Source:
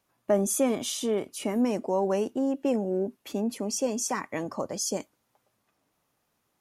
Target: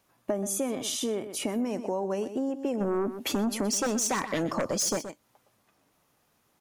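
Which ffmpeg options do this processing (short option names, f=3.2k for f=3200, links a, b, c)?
-filter_complex "[0:a]asplit=3[a][b][c];[a]afade=t=out:st=2.8:d=0.02[d];[b]aeval=exprs='0.15*sin(PI/2*2.51*val(0)/0.15)':c=same,afade=t=in:st=2.8:d=0.02,afade=t=out:st=4.98:d=0.02[e];[c]afade=t=in:st=4.98:d=0.02[f];[d][e][f]amix=inputs=3:normalize=0,aecho=1:1:124:0.188,acompressor=threshold=-34dB:ratio=4,volume=5.5dB"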